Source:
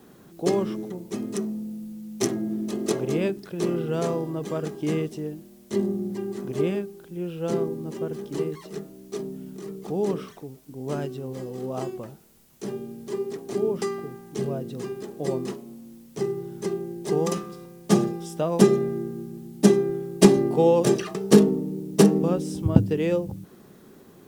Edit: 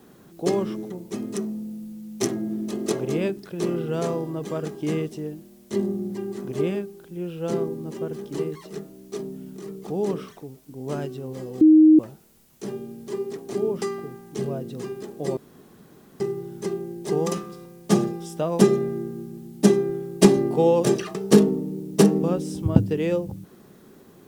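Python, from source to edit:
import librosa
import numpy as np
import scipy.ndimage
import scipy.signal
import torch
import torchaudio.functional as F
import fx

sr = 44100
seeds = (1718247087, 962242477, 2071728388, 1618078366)

y = fx.edit(x, sr, fx.bleep(start_s=11.61, length_s=0.38, hz=312.0, db=-9.0),
    fx.room_tone_fill(start_s=15.37, length_s=0.83), tone=tone)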